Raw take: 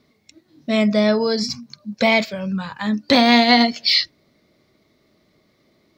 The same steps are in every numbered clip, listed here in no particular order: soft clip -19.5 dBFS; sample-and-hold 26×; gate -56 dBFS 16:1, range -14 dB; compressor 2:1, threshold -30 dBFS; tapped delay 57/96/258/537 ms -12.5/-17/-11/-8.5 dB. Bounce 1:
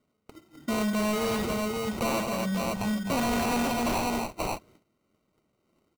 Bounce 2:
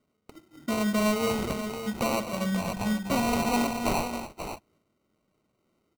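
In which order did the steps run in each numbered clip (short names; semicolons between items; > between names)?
sample-and-hold > tapped delay > soft clip > compressor > gate; compressor > soft clip > gate > tapped delay > sample-and-hold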